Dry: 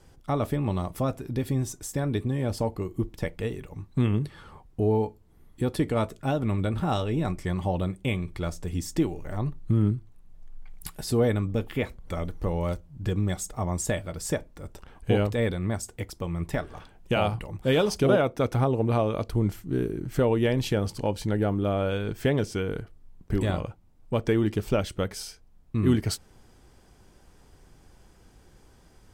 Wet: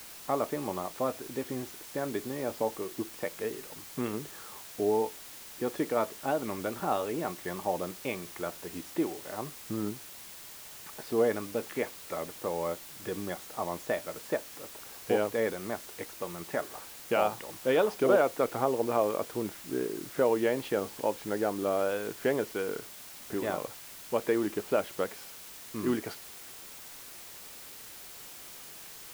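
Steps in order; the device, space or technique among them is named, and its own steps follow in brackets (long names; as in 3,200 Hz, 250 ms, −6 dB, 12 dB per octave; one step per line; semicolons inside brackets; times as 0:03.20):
wax cylinder (band-pass filter 370–2,000 Hz; tape wow and flutter; white noise bed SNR 14 dB)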